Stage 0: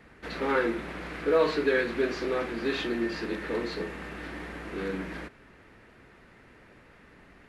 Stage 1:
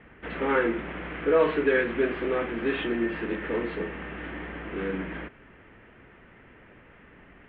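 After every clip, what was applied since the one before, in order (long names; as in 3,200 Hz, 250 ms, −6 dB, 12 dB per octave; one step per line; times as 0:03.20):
Chebyshev low-pass filter 3,200 Hz, order 5
level +2.5 dB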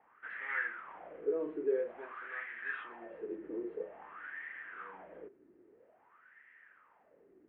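dynamic equaliser 290 Hz, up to −7 dB, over −39 dBFS, Q 1.1
LFO wah 0.5 Hz 330–1,900 Hz, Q 7
level +1 dB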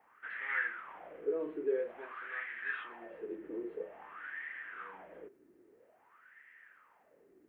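high-shelf EQ 2,900 Hz +9.5 dB
level −1 dB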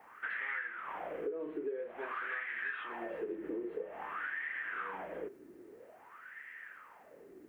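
downward compressor 12 to 1, threshold −45 dBFS, peak gain reduction 18 dB
level +9.5 dB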